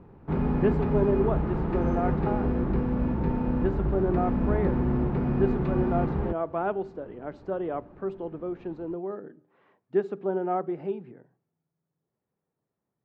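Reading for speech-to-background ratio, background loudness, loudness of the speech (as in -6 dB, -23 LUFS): -3.5 dB, -27.5 LUFS, -31.0 LUFS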